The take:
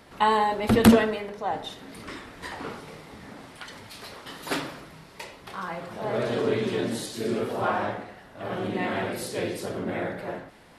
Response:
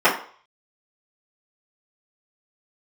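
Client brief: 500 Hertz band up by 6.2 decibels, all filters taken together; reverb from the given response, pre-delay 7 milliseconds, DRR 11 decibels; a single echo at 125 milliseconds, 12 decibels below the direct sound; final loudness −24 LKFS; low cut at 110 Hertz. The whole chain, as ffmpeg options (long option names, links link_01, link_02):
-filter_complex "[0:a]highpass=110,equalizer=frequency=500:width_type=o:gain=7.5,aecho=1:1:125:0.251,asplit=2[link_01][link_02];[1:a]atrim=start_sample=2205,adelay=7[link_03];[link_02][link_03]afir=irnorm=-1:irlink=0,volume=-34dB[link_04];[link_01][link_04]amix=inputs=2:normalize=0,volume=-1.5dB"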